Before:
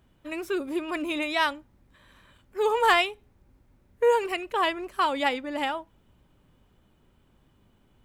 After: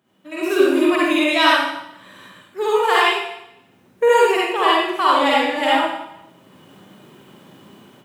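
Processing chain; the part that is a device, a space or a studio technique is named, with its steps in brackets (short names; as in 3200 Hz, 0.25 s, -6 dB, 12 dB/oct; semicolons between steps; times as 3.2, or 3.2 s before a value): far laptop microphone (reverb RT60 0.80 s, pre-delay 44 ms, DRR -6.5 dB; HPF 150 Hz 24 dB/oct; AGC gain up to 15.5 dB); gain -2 dB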